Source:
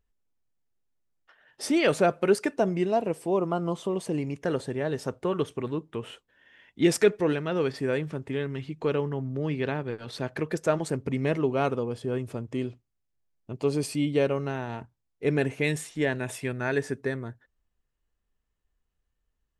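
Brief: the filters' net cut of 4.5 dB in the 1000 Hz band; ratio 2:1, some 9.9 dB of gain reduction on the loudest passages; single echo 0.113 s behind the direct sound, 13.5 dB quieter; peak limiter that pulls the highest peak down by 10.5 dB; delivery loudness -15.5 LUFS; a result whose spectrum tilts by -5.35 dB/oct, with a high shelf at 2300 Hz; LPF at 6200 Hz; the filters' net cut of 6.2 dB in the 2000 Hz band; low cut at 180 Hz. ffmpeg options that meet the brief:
-af "highpass=180,lowpass=6.2k,equalizer=f=1k:t=o:g=-6,equalizer=f=2k:t=o:g=-8,highshelf=f=2.3k:g=3.5,acompressor=threshold=-35dB:ratio=2,alimiter=level_in=6.5dB:limit=-24dB:level=0:latency=1,volume=-6.5dB,aecho=1:1:113:0.211,volume=25dB"

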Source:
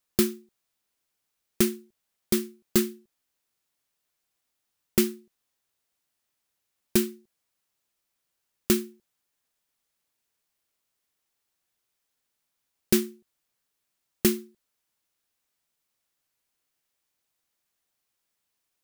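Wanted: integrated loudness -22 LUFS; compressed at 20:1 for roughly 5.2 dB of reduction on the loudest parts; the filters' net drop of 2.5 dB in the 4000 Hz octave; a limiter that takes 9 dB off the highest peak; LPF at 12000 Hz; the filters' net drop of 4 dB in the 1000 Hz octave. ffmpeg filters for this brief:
-af "lowpass=12k,equalizer=f=1k:t=o:g=-5.5,equalizer=f=4k:t=o:g=-3,acompressor=threshold=-22dB:ratio=20,volume=15.5dB,alimiter=limit=-2.5dB:level=0:latency=1"

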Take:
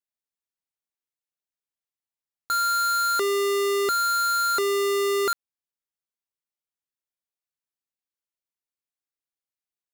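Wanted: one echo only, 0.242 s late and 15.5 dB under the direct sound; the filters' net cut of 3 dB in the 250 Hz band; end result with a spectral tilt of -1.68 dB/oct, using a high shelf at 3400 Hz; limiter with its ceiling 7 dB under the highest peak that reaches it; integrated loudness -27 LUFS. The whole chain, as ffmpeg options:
-af "equalizer=f=250:t=o:g=-8.5,highshelf=f=3.4k:g=8,alimiter=limit=-19dB:level=0:latency=1,aecho=1:1:242:0.168"

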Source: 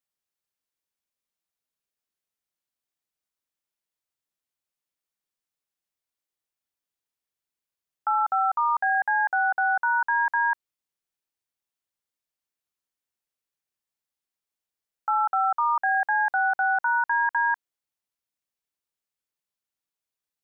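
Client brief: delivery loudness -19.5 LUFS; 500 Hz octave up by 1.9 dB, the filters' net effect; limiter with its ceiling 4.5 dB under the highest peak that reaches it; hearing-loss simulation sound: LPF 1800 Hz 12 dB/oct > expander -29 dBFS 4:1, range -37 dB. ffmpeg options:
-af "equalizer=f=500:t=o:g=3.5,alimiter=limit=-20dB:level=0:latency=1,lowpass=1.8k,agate=range=-37dB:threshold=-29dB:ratio=4,volume=8.5dB"

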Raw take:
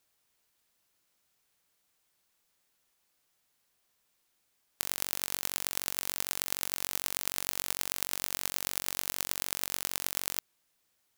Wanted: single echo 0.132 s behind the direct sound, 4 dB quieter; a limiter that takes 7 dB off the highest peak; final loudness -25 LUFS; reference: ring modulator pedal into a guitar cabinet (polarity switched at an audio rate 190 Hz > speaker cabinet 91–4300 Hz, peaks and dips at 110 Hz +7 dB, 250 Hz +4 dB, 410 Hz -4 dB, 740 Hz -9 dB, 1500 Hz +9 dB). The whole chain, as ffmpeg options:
-af "alimiter=limit=-8.5dB:level=0:latency=1,aecho=1:1:132:0.631,aeval=exprs='val(0)*sgn(sin(2*PI*190*n/s))':c=same,highpass=91,equalizer=f=110:t=q:w=4:g=7,equalizer=f=250:t=q:w=4:g=4,equalizer=f=410:t=q:w=4:g=-4,equalizer=f=740:t=q:w=4:g=-9,equalizer=f=1.5k:t=q:w=4:g=9,lowpass=f=4.3k:w=0.5412,lowpass=f=4.3k:w=1.3066,volume=16dB"

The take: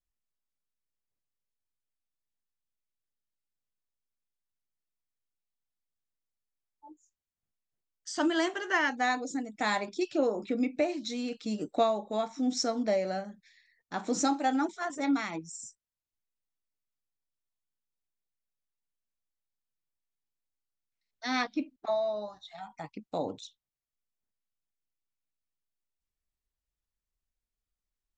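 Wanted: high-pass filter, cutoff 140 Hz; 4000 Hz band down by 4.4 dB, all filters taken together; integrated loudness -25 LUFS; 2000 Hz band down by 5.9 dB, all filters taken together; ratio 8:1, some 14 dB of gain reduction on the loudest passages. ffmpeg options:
-af "highpass=140,equalizer=f=2k:t=o:g=-6.5,equalizer=f=4k:t=o:g=-4,acompressor=threshold=-38dB:ratio=8,volume=18dB"

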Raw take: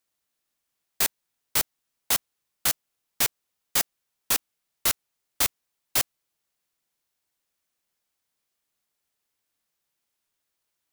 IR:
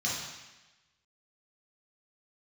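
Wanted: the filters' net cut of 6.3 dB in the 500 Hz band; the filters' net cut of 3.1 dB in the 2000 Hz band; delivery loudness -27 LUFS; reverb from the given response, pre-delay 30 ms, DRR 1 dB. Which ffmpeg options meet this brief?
-filter_complex "[0:a]equalizer=f=500:t=o:g=-8,equalizer=f=2k:t=o:g=-3.5,asplit=2[a][b];[1:a]atrim=start_sample=2205,adelay=30[c];[b][c]afir=irnorm=-1:irlink=0,volume=-8.5dB[d];[a][d]amix=inputs=2:normalize=0,volume=-1dB"

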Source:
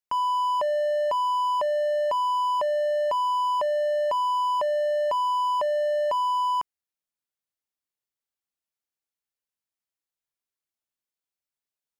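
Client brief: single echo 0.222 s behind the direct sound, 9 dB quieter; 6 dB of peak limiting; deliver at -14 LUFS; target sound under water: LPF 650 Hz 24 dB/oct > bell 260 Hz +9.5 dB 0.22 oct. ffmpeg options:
-af "alimiter=level_in=1.5dB:limit=-24dB:level=0:latency=1,volume=-1.5dB,lowpass=f=650:w=0.5412,lowpass=f=650:w=1.3066,equalizer=f=260:t=o:w=0.22:g=9.5,aecho=1:1:222:0.355,volume=20dB"

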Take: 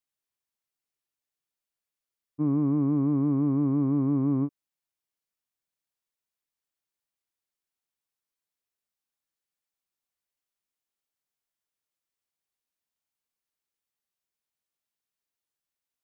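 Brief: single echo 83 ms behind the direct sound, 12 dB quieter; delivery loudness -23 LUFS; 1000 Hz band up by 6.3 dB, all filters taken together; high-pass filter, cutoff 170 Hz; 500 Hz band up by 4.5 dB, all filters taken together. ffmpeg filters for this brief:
-af "highpass=170,equalizer=f=500:t=o:g=5,equalizer=f=1k:t=o:g=6,aecho=1:1:83:0.251,volume=2dB"

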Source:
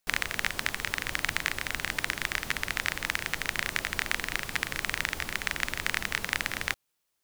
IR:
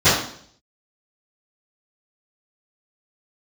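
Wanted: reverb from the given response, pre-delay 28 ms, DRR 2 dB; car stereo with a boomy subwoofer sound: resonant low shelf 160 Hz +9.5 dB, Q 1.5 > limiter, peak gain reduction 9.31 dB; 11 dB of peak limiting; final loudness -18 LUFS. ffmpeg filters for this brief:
-filter_complex "[0:a]alimiter=limit=-16dB:level=0:latency=1,asplit=2[a][b];[1:a]atrim=start_sample=2205,adelay=28[c];[b][c]afir=irnorm=-1:irlink=0,volume=-26dB[d];[a][d]amix=inputs=2:normalize=0,lowshelf=f=160:t=q:w=1.5:g=9.5,volume=18.5dB,alimiter=limit=-5dB:level=0:latency=1"

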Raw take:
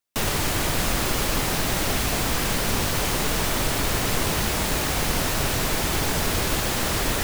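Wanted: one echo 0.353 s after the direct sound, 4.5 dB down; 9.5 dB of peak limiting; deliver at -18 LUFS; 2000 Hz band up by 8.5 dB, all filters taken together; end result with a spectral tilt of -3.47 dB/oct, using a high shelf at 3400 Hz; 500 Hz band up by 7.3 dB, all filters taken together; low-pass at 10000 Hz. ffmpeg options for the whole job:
-af "lowpass=10k,equalizer=f=500:t=o:g=8.5,equalizer=f=2k:t=o:g=8.5,highshelf=f=3.4k:g=5,alimiter=limit=-15.5dB:level=0:latency=1,aecho=1:1:353:0.596,volume=4.5dB"

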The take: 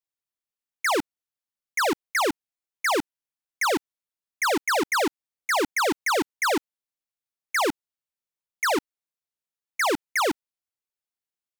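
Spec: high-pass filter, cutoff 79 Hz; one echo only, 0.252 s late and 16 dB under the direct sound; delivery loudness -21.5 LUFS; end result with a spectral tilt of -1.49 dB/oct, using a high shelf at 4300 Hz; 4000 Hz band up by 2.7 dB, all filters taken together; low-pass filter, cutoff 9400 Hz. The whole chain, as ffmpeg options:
-af "highpass=79,lowpass=9.4k,equalizer=f=4k:t=o:g=6,highshelf=f=4.3k:g=-4.5,aecho=1:1:252:0.158,volume=3.5dB"

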